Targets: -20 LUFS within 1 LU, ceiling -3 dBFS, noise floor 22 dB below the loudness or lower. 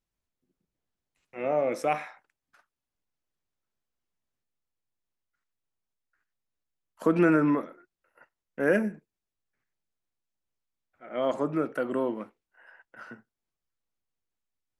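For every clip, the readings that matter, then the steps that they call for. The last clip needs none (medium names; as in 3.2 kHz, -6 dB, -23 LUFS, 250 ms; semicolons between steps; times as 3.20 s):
loudness -27.5 LUFS; peak level -11.5 dBFS; loudness target -20.0 LUFS
-> trim +7.5 dB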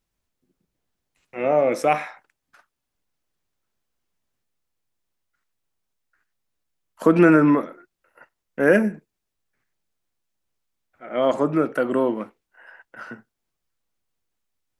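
loudness -20.0 LUFS; peak level -4.0 dBFS; noise floor -81 dBFS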